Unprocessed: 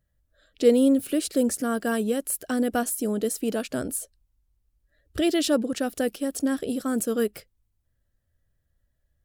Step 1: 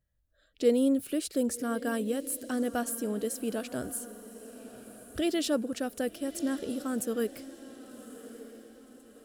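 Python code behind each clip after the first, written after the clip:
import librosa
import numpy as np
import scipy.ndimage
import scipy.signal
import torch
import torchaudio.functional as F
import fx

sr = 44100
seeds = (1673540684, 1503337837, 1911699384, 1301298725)

y = fx.echo_diffused(x, sr, ms=1140, feedback_pct=44, wet_db=-14.5)
y = y * 10.0 ** (-6.0 / 20.0)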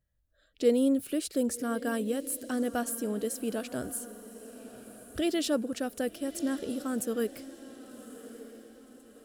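y = x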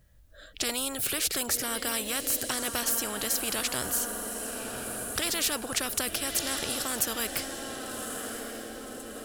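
y = fx.spectral_comp(x, sr, ratio=4.0)
y = y * 10.0 ** (3.5 / 20.0)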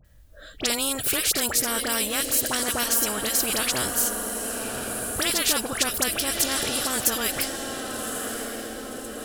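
y = fx.dispersion(x, sr, late='highs', ms=48.0, hz=1600.0)
y = y * 10.0 ** (5.5 / 20.0)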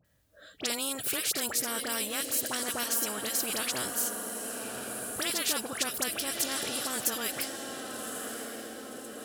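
y = scipy.signal.sosfilt(scipy.signal.butter(2, 130.0, 'highpass', fs=sr, output='sos'), x)
y = y * 10.0 ** (-7.0 / 20.0)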